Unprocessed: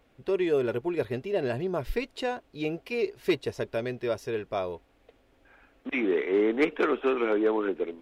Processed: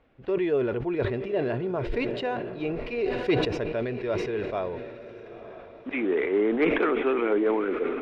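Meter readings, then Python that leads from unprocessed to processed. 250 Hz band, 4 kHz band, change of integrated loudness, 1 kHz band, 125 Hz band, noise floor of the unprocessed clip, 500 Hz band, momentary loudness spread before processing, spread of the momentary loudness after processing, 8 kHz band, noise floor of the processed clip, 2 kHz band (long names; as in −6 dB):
+2.0 dB, +1.5 dB, +1.5 dB, +2.0 dB, +4.5 dB, −64 dBFS, +1.5 dB, 8 LU, 15 LU, can't be measured, −46 dBFS, +1.5 dB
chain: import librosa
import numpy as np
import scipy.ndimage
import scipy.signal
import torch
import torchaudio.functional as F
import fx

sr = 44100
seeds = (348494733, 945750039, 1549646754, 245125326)

y = scipy.signal.sosfilt(scipy.signal.butter(2, 2800.0, 'lowpass', fs=sr, output='sos'), x)
y = fx.echo_diffused(y, sr, ms=944, feedback_pct=41, wet_db=-13.0)
y = fx.sustainer(y, sr, db_per_s=40.0)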